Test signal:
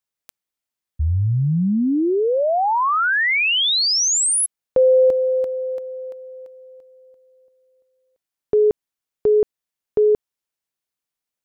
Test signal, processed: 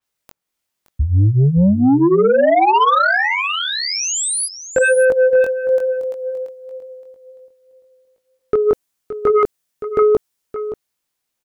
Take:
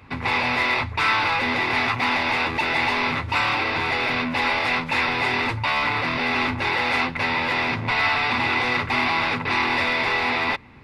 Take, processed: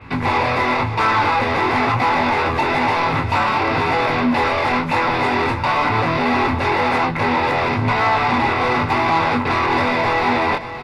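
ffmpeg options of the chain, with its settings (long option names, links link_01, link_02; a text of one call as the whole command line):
ffmpeg -i in.wav -filter_complex "[0:a]flanger=delay=18:depth=4.6:speed=0.99,acrossover=split=1400[link_01][link_02];[link_02]acompressor=threshold=-35dB:ratio=6:attack=0.17:release=300:detection=rms[link_03];[link_01][link_03]amix=inputs=2:normalize=0,aeval=exprs='0.335*sin(PI/2*2.51*val(0)/0.335)':channel_layout=same,aecho=1:1:570:0.251,adynamicequalizer=threshold=0.0112:dfrequency=4800:dqfactor=0.7:tfrequency=4800:tqfactor=0.7:attack=5:release=100:ratio=0.375:range=3:mode=boostabove:tftype=highshelf" out.wav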